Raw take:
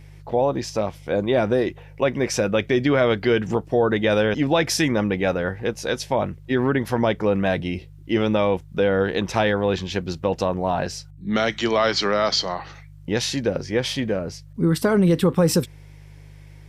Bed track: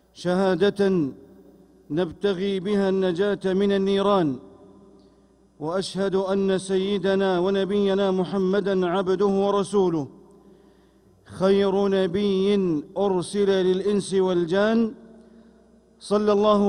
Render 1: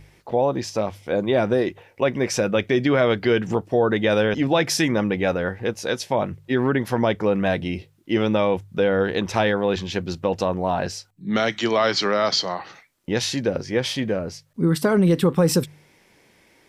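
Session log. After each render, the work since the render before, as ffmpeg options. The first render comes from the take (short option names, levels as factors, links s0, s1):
-af "bandreject=f=50:t=h:w=4,bandreject=f=100:t=h:w=4,bandreject=f=150:t=h:w=4"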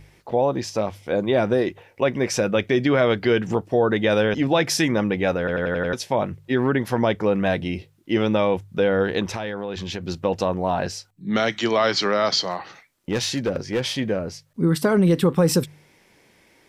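-filter_complex "[0:a]asettb=1/sr,asplit=3[s0][s1][s2];[s0]atrim=end=9.274[s3];[s1]atrim=start=9.27:end=10.08,asetpts=PTS-STARTPTS,afade=t=in:d=0.004:c=qsin,afade=t=out:st=0.806:d=0.004:c=qsin,acompressor=threshold=0.0562:ratio=6:attack=3.2:release=140:knee=1:detection=peak[s4];[s2]atrim=start=10.076[s5];[s3][s4]acrossfade=d=0.004:c1=hsin:c2=qsin[s6];[s6][s5]acrossfade=d=0.004:c1=qsin:c2=hsin,asettb=1/sr,asplit=3[s7][s8][s9];[s7]atrim=end=12.414[s10];[s8]atrim=start=12.41:end=13.86,asetpts=PTS-STARTPTS,afade=t=in:d=0.004:c=qsin,afade=t=out:st=1.446:d=0.004:c=qsin,volume=7.5,asoftclip=hard,volume=0.133[s11];[s9]atrim=start=13.856[s12];[s10][s11]acrossfade=d=0.004:c1=hsin:c2=qsin[s13];[s13][s12]acrossfade=d=0.004:c1=qsin:c2=hsin,asplit=7[s14][s15][s16][s17][s18][s19][s20];[s14]atrim=end=5.482[s21];[s15]atrim=start=5.388:end=5.482[s22];[s16]atrim=start=5.388:end=5.482[s23];[s17]atrim=start=5.388:end=5.482[s24];[s18]atrim=start=5.388:end=5.482[s25];[s19]atrim=start=5.388:end=5.482[s26];[s20]atrim=start=5.928[s27];[s21][s22]acrossfade=d=0.004:c1=hsin:c2=hsin[s28];[s28][s23]acrossfade=d=0.004:c1=hsin:c2=hsin[s29];[s29][s24]acrossfade=d=0.004:c1=hsin:c2=hsin[s30];[s30][s25]acrossfade=d=0.004:c1=hsin:c2=hsin[s31];[s31][s26]acrossfade=d=0.004:c1=hsin:c2=hsin[s32];[s32][s27]acrossfade=d=0.004:c1=hsin:c2=hsin"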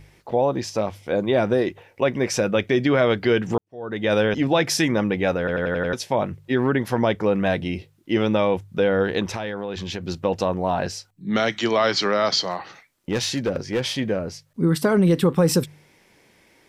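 -filter_complex "[0:a]asplit=2[s0][s1];[s0]atrim=end=3.58,asetpts=PTS-STARTPTS,afade=t=out:st=3.576:d=0.004:c=hsin[s2];[s1]atrim=start=3.58,asetpts=PTS-STARTPTS,afade=t=in:d=0.55:c=qua[s3];[s2][s3]concat=n=2:v=0:a=1"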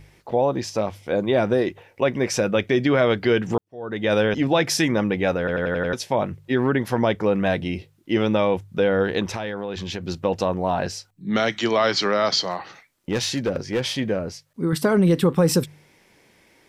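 -filter_complex "[0:a]asettb=1/sr,asplit=3[s0][s1][s2];[s0]atrim=end=14.324[s3];[s1]atrim=start=14.32:end=14.73,asetpts=PTS-STARTPTS,afade=t=in:d=0.004:c=qsin,afade=t=out:st=0.406:d=0.004:c=qsin,lowshelf=f=240:g=-8[s4];[s2]atrim=start=14.726[s5];[s3][s4]acrossfade=d=0.004:c1=hsin:c2=qsin[s6];[s6][s5]acrossfade=d=0.004:c1=qsin:c2=hsin"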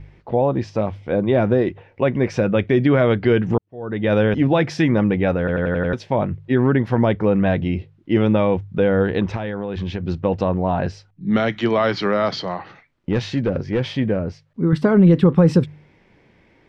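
-af "lowpass=2900,lowshelf=f=230:g=10"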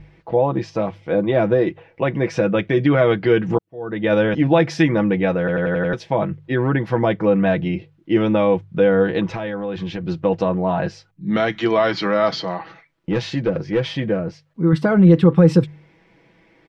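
-af "lowshelf=f=140:g=-6.5,aecho=1:1:6.1:0.59"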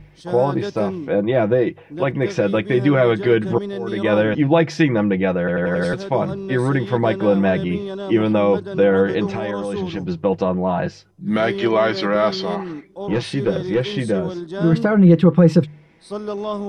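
-filter_complex "[1:a]volume=0.447[s0];[0:a][s0]amix=inputs=2:normalize=0"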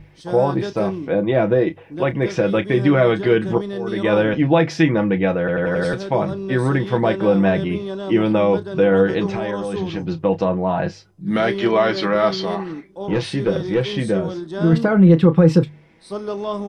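-filter_complex "[0:a]asplit=2[s0][s1];[s1]adelay=31,volume=0.224[s2];[s0][s2]amix=inputs=2:normalize=0"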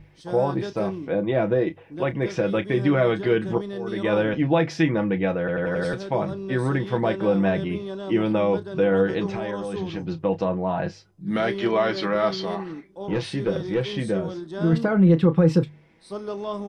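-af "volume=0.562"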